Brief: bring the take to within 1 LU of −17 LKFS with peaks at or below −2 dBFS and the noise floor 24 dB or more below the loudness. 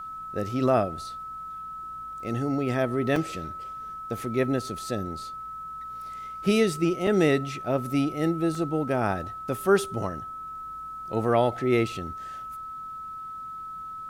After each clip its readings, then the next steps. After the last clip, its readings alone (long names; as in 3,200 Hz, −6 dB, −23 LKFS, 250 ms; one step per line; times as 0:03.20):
number of dropouts 3; longest dropout 2.2 ms; interfering tone 1,300 Hz; level of the tone −35 dBFS; integrated loudness −28.0 LKFS; sample peak −8.5 dBFS; target loudness −17.0 LKFS
→ repair the gap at 0:03.16/0:07.07/0:08.55, 2.2 ms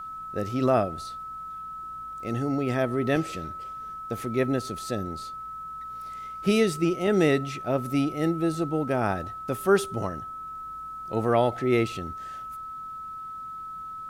number of dropouts 0; interfering tone 1,300 Hz; level of the tone −35 dBFS
→ notch filter 1,300 Hz, Q 30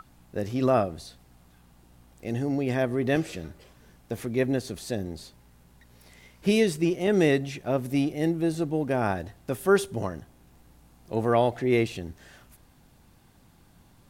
interfering tone none found; integrated loudness −27.0 LKFS; sample peak −9.0 dBFS; target loudness −17.0 LKFS
→ level +10 dB
brickwall limiter −2 dBFS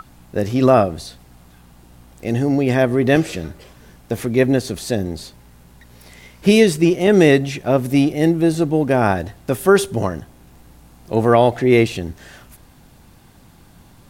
integrated loudness −17.0 LKFS; sample peak −2.0 dBFS; background noise floor −48 dBFS